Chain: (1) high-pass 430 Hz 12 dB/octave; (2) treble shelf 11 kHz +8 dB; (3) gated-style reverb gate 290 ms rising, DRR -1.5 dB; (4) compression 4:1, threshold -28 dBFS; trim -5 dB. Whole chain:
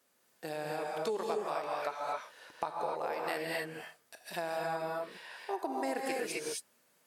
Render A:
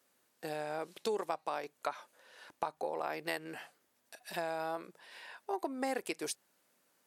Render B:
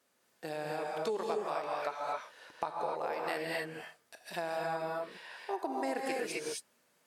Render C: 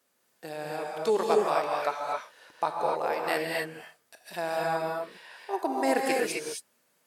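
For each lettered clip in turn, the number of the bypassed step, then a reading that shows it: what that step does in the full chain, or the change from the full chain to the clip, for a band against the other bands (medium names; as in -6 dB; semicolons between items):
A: 3, momentary loudness spread change +7 LU; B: 2, 8 kHz band -2.0 dB; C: 4, mean gain reduction 5.0 dB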